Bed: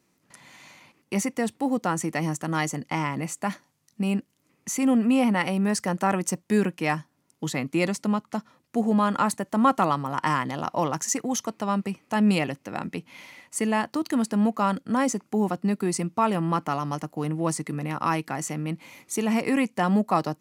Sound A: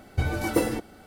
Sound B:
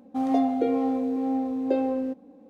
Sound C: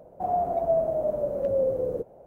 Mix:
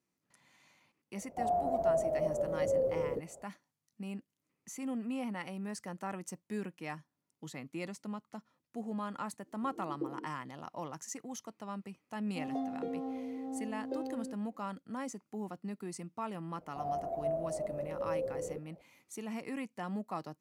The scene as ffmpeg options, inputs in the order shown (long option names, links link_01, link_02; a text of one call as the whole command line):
ffmpeg -i bed.wav -i cue0.wav -i cue1.wav -i cue2.wav -filter_complex "[3:a]asplit=2[link_01][link_02];[0:a]volume=-16.5dB[link_03];[1:a]asuperpass=centerf=340:order=4:qfactor=2.1[link_04];[2:a]equalizer=frequency=2400:width_type=o:width=0.36:gain=-8.5[link_05];[link_01]atrim=end=2.26,asetpts=PTS-STARTPTS,volume=-6dB,afade=type=in:duration=0.004:curve=hsin,afade=type=out:start_time=2.256:duration=0.004:curve=hsin,adelay=1170[link_06];[link_04]atrim=end=1.06,asetpts=PTS-STARTPTS,volume=-12.5dB,afade=type=in:duration=0.004:curve=hsin,afade=type=out:start_time=1.056:duration=0.004:curve=hsin,adelay=9450[link_07];[link_05]atrim=end=2.49,asetpts=PTS-STARTPTS,volume=-14dB,afade=type=in:duration=0.004:curve=hsin,afade=type=out:start_time=2.486:duration=0.004:curve=hsin,adelay=12210[link_08];[link_02]atrim=end=2.26,asetpts=PTS-STARTPTS,volume=-11dB,afade=type=in:duration=0.004:curve=hsin,afade=type=out:start_time=2.256:duration=0.004:curve=hsin,adelay=16560[link_09];[link_03][link_06][link_07][link_08][link_09]amix=inputs=5:normalize=0" out.wav